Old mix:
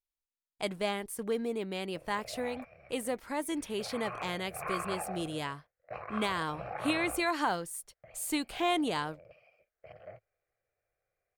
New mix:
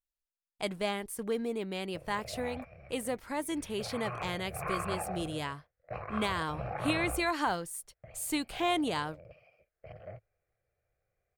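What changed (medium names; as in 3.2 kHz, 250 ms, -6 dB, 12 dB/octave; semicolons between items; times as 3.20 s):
speech: add bass shelf 340 Hz -8.5 dB; master: add bass shelf 230 Hz +12 dB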